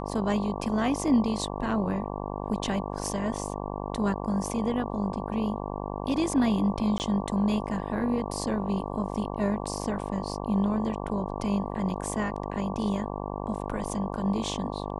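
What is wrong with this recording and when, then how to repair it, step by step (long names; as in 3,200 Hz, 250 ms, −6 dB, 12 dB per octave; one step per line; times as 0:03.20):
mains buzz 50 Hz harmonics 23 −34 dBFS
0:06.98–0:07.00: drop-out 19 ms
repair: hum removal 50 Hz, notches 23
repair the gap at 0:06.98, 19 ms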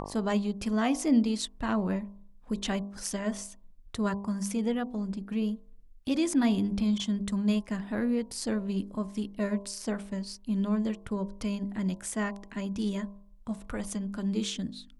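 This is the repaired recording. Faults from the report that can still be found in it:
none of them is left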